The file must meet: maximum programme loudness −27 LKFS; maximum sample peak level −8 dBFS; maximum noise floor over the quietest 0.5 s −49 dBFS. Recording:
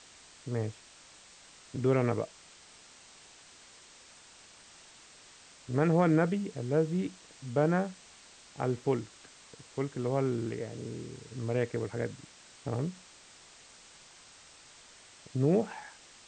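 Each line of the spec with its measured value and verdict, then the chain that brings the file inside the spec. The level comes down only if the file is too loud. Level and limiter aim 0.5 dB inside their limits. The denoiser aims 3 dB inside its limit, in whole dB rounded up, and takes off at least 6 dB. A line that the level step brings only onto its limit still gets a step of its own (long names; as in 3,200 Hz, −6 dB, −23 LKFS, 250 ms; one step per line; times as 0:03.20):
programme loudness −32.0 LKFS: in spec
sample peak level −14.5 dBFS: in spec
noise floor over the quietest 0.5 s −56 dBFS: in spec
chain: no processing needed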